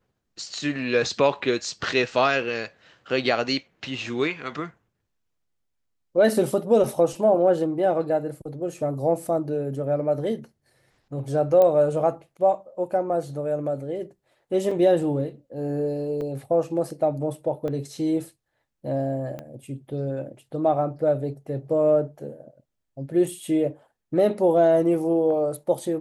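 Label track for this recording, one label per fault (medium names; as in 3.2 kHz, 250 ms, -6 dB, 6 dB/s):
11.620000	11.620000	pop -11 dBFS
14.710000	14.710000	dropout 3.9 ms
16.210000	16.210000	dropout 3.1 ms
17.680000	17.680000	dropout 2.4 ms
19.390000	19.390000	pop -22 dBFS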